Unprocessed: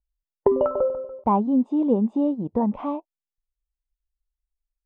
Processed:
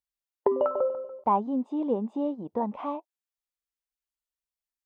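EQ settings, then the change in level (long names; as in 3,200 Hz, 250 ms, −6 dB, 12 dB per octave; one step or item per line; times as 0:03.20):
high-pass filter 650 Hz 6 dB per octave
0.0 dB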